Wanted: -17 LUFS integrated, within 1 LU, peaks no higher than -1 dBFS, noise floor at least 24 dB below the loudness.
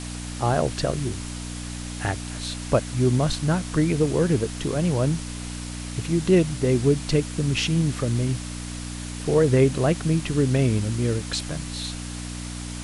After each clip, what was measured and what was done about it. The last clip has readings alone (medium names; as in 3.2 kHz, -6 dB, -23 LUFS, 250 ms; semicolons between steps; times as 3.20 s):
hum 60 Hz; highest harmonic 300 Hz; hum level -31 dBFS; noise floor -34 dBFS; noise floor target -49 dBFS; loudness -24.5 LUFS; peak level -7.0 dBFS; loudness target -17.0 LUFS
-> de-hum 60 Hz, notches 5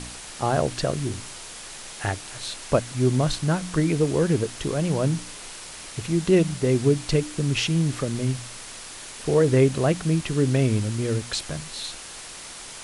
hum not found; noise floor -40 dBFS; noise floor target -48 dBFS
-> noise print and reduce 8 dB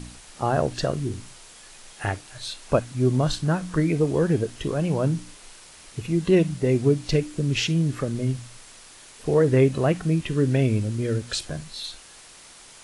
noise floor -48 dBFS; loudness -24.0 LUFS; peak level -7.0 dBFS; loudness target -17.0 LUFS
-> trim +7 dB; peak limiter -1 dBFS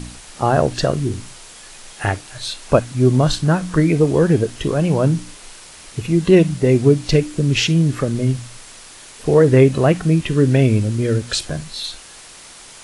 loudness -17.0 LUFS; peak level -1.0 dBFS; noise floor -41 dBFS